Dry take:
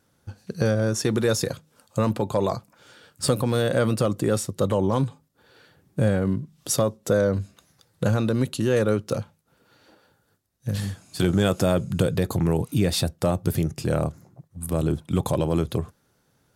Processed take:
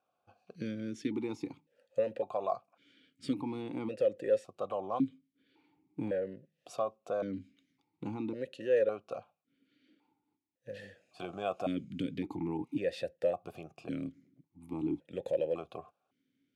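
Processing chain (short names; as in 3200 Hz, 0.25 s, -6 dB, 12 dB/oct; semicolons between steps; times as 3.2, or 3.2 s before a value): vowel sequencer 1.8 Hz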